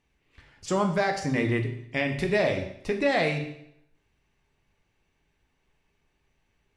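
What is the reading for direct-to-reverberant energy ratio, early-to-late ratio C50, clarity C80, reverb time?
3.0 dB, 8.5 dB, 11.0 dB, 0.75 s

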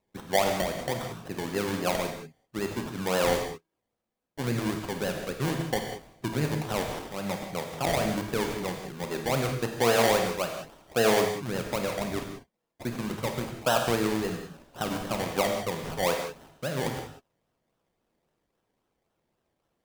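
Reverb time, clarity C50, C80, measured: no single decay rate, 4.5 dB, 6.5 dB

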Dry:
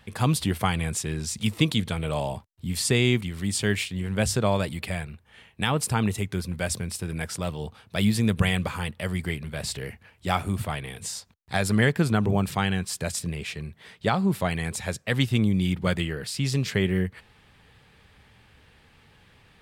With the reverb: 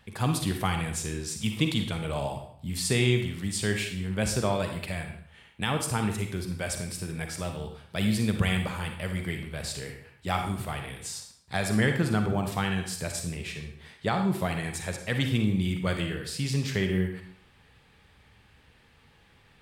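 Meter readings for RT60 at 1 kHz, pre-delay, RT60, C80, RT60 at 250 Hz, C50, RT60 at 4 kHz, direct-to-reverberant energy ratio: 0.60 s, 38 ms, 0.60 s, 9.5 dB, 0.60 s, 6.0 dB, 0.55 s, 4.5 dB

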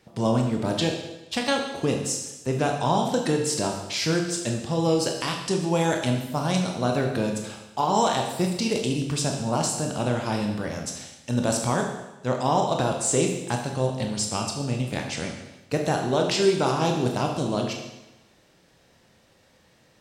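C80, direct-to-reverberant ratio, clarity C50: 7.0 dB, 2.0 dB, 5.5 dB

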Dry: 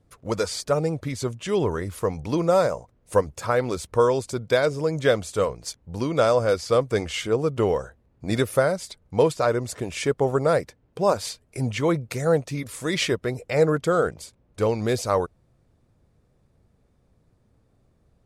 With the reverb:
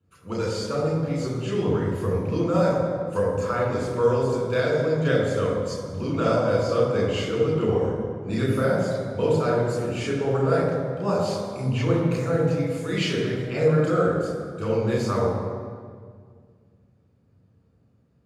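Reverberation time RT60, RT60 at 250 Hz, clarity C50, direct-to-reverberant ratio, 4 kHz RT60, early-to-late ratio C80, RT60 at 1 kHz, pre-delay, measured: 1.9 s, 2.4 s, 0.5 dB, -5.0 dB, 1.3 s, 2.5 dB, 1.7 s, 3 ms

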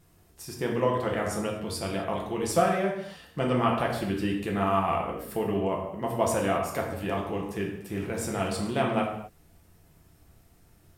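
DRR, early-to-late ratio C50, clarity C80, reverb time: -1.5 dB, 4.5 dB, 7.0 dB, no single decay rate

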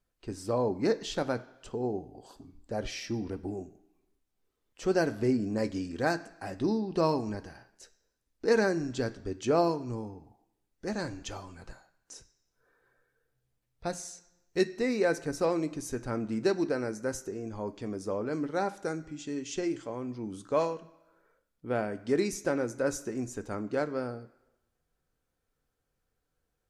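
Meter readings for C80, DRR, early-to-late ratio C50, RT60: 19.0 dB, 9.0 dB, 16.5 dB, 1.0 s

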